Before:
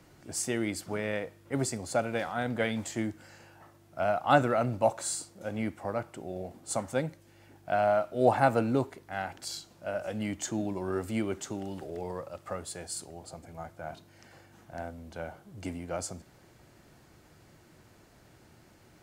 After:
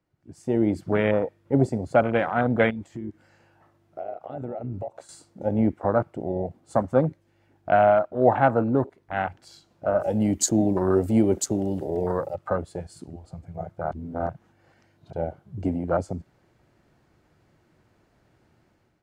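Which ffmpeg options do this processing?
-filter_complex "[0:a]asettb=1/sr,asplit=3[a][b][c];[a]atrim=end=2.704[d];[b]atrim=start=2.7:end=5.09,asetpts=PTS-STARTPTS,afade=t=in:d=0.004:c=qsin,afade=t=out:st=2.386:d=0.004:c=qsin,acompressor=threshold=-39dB:ratio=8:attack=3.2:release=140:knee=1:detection=peak[e];[c]atrim=start=5.086[f];[d][e]acrossfade=d=0.004:c1=hsin:c2=qsin[g];[g][f]acrossfade=d=0.004:c1=qsin:c2=hsin,asettb=1/sr,asplit=3[h][i][j];[h]atrim=end=10.004[k];[i]atrim=start=10:end=12.35,asetpts=PTS-STARTPTS,afade=t=in:d=0.004:c=qsin,afade=t=out:st=2.346:d=0.004:c=qsin,aemphasis=mode=production:type=75kf[l];[j]atrim=start=12.346[m];[k][l]acrossfade=d=0.004:c1=hsin:c2=qsin[n];[n][m]acrossfade=d=0.004:c1=qsin:c2=hsin,asplit=3[o][p][q];[o]atrim=end=13.922[r];[p]atrim=start=13.918:end=15.132,asetpts=PTS-STARTPTS,areverse[s];[q]atrim=start=15.128[t];[r][s]acrossfade=d=0.004:c1=hsin:c2=hsin[u];[u][t]acrossfade=d=0.004:c1=hsin:c2=hsin,afwtdn=0.0178,highshelf=f=4.8k:g=-12,dynaudnorm=f=190:g=5:m=16dB,volume=-4dB"

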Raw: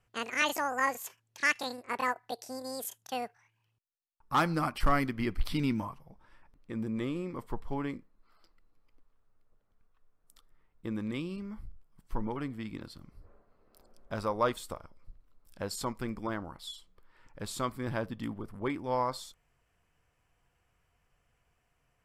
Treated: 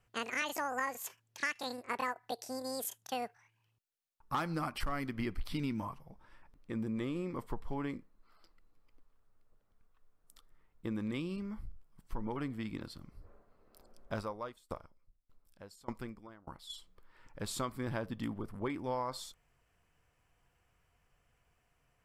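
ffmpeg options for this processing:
-filter_complex "[0:a]asplit=3[a][b][c];[a]afade=t=out:st=14.2:d=0.02[d];[b]aeval=exprs='val(0)*pow(10,-26*if(lt(mod(1.7*n/s,1),2*abs(1.7)/1000),1-mod(1.7*n/s,1)/(2*abs(1.7)/1000),(mod(1.7*n/s,1)-2*abs(1.7)/1000)/(1-2*abs(1.7)/1000))/20)':c=same,afade=t=in:st=14.2:d=0.02,afade=t=out:st=16.69:d=0.02[e];[c]afade=t=in:st=16.69:d=0.02[f];[d][e][f]amix=inputs=3:normalize=0,acompressor=threshold=-32dB:ratio=6"

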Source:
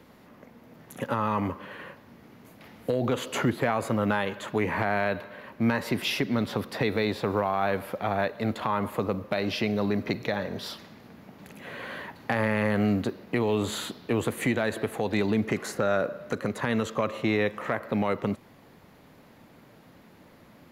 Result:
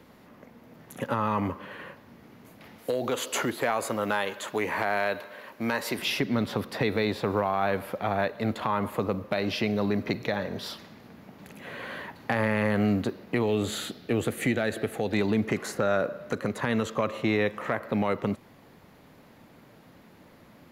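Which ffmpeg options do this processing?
-filter_complex "[0:a]asettb=1/sr,asplit=3[a][b][c];[a]atrim=end=2.784[d];[b]atrim=start=2.78:end=5.99,asetpts=PTS-STARTPTS,afade=t=in:d=0.004:c=qsin,afade=t=out:st=3.206:d=0.004:c=qsin,bass=f=250:g=-11,treble=f=4k:g=7[e];[c]atrim=start=5.986[f];[d][e]acrossfade=d=0.004:c1=hsin:c2=qsin[g];[g][f]acrossfade=d=0.004:c1=qsin:c2=hsin,asettb=1/sr,asplit=3[h][i][j];[h]atrim=end=13.464[k];[i]atrim=start=13.46:end=15.13,asetpts=PTS-STARTPTS,afade=t=in:d=0.004:c=qsin,afade=t=out:st=1.666:d=0.004:c=qsin,equalizer=f=1k:t=o:w=0.26:g=-13.5[l];[j]atrim=start=15.126[m];[k][l]acrossfade=d=0.004:c1=hsin:c2=qsin[n];[n][m]acrossfade=d=0.004:c1=qsin:c2=hsin"

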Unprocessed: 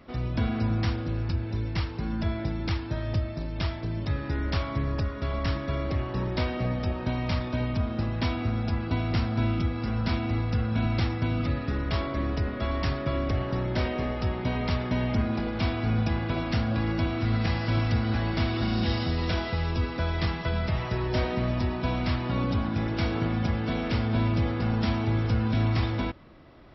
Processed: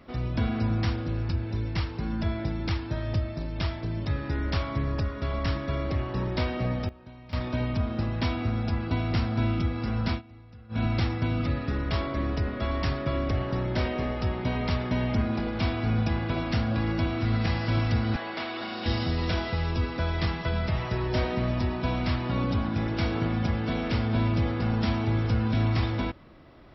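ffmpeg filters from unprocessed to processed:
-filter_complex "[0:a]asettb=1/sr,asplit=3[a][b][c];[a]atrim=end=18.164[d];[b]atrim=start=18.16:end=18.86,asetpts=PTS-STARTPTS,afade=t=in:d=0.004:c=qsin,afade=t=out:st=0.696:d=0.004:c=qsin,highpass=440,lowpass=4.4k[e];[c]atrim=start=18.856[f];[d][e]acrossfade=d=0.004:c1=hsin:c2=qsin[g];[g][f]acrossfade=d=0.004:c1=qsin:c2=hsin,asplit=5[h][i][j][k][l];[h]atrim=end=6.89,asetpts=PTS-STARTPTS,afade=t=out:st=6.75:d=0.14:c=log:silence=0.125893[m];[i]atrim=start=6.89:end=7.33,asetpts=PTS-STARTPTS,volume=-18dB[n];[j]atrim=start=7.33:end=10.22,asetpts=PTS-STARTPTS,afade=t=in:d=0.14:c=log:silence=0.125893,afade=t=out:st=2.74:d=0.15:c=qsin:silence=0.0794328[o];[k]atrim=start=10.22:end=10.69,asetpts=PTS-STARTPTS,volume=-22dB[p];[l]atrim=start=10.69,asetpts=PTS-STARTPTS,afade=t=in:d=0.15:c=qsin:silence=0.0794328[q];[m][n][o][p][q]concat=n=5:v=0:a=1"

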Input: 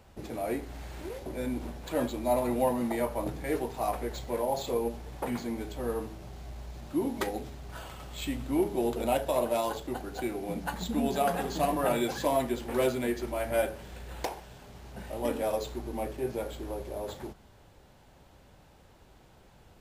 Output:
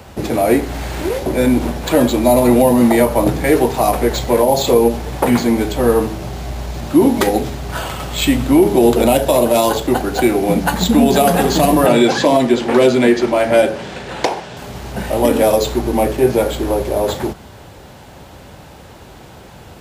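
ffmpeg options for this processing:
-filter_complex "[0:a]asettb=1/sr,asplit=3[a][b][c];[a]atrim=end=11.864[d];[b]atrim=start=11.86:end=14.57,asetpts=PTS-STARTPTS,afade=t=in:d=0.004:c=qsin,afade=t=out:st=2.706:d=0.004:c=qsin,highpass=140,lowpass=6k[e];[c]atrim=start=14.566[f];[d][e]acrossfade=d=0.004:c1=hsin:c2=qsin[g];[g][f]acrossfade=d=0.004:c1=qsin:c2=hsin,highpass=62,acrossover=split=480|3000[h][i][j];[i]acompressor=threshold=-34dB:ratio=6[k];[h][k][j]amix=inputs=3:normalize=0,alimiter=level_in=21dB:limit=-1dB:release=50:level=0:latency=1,volume=-1dB"

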